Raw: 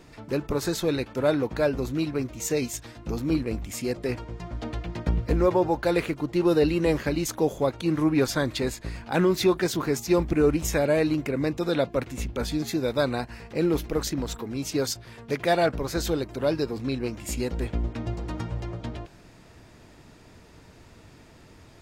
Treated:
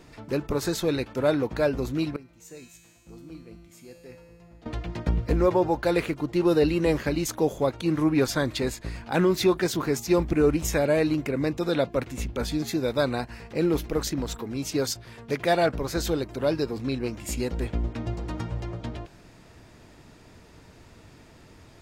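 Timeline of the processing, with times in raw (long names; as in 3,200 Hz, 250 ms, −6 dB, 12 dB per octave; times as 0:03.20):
0:02.16–0:04.66: tuned comb filter 170 Hz, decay 1.9 s, mix 90%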